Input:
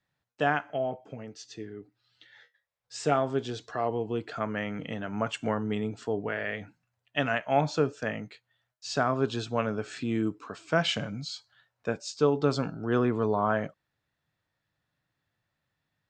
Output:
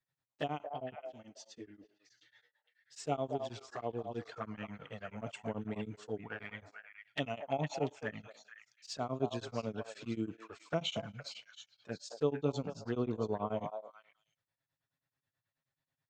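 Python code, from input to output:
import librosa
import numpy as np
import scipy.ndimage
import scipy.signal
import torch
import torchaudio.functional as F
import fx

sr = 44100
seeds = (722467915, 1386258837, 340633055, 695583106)

y = fx.high_shelf(x, sr, hz=3900.0, db=3.0)
y = fx.env_flanger(y, sr, rest_ms=7.5, full_db=-24.0)
y = fx.echo_stepped(y, sr, ms=230, hz=740.0, octaves=1.4, feedback_pct=70, wet_db=-3)
y = y * np.abs(np.cos(np.pi * 9.3 * np.arange(len(y)) / sr))
y = y * 10.0 ** (-5.5 / 20.0)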